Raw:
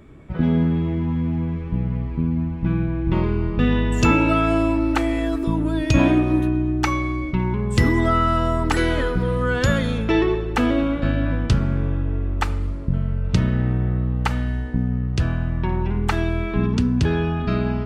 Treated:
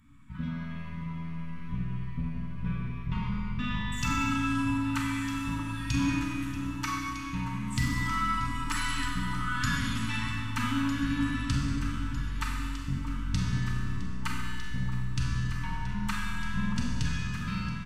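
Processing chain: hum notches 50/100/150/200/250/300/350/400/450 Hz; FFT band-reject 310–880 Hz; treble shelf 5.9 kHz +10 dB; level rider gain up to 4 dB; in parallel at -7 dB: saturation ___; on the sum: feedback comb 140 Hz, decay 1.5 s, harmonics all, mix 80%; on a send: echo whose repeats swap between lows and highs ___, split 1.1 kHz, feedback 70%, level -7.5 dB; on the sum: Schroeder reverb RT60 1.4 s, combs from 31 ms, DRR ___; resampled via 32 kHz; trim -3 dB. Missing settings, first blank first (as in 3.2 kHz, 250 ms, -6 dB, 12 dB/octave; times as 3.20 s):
-19 dBFS, 627 ms, 0 dB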